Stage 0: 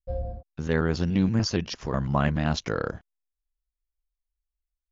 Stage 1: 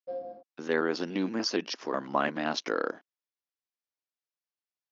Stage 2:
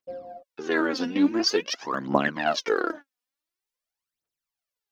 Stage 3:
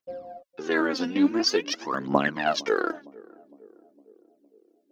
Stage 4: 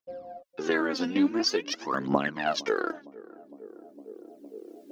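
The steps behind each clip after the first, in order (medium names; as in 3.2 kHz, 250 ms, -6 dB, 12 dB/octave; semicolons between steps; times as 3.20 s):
elliptic band-pass 280–5700 Hz, stop band 60 dB
phaser 0.47 Hz, delay 4.2 ms, feedback 73%; trim +2 dB
band-passed feedback delay 459 ms, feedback 64%, band-pass 360 Hz, level -21.5 dB
recorder AGC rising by 11 dB/s; trim -4.5 dB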